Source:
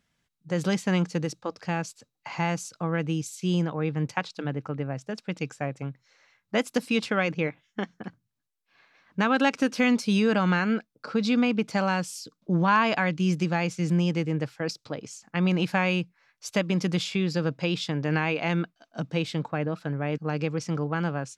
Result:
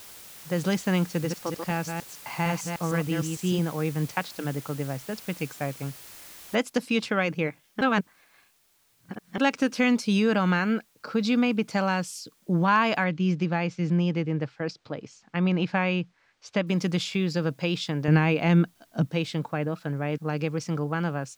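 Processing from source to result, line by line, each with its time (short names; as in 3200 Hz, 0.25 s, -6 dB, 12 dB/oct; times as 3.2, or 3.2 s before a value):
1.09–3.59 reverse delay 0.152 s, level -4.5 dB
6.55 noise floor step -46 dB -66 dB
7.81–9.38 reverse
13.04–16.67 air absorption 140 m
18.08–19.07 low shelf 320 Hz +10 dB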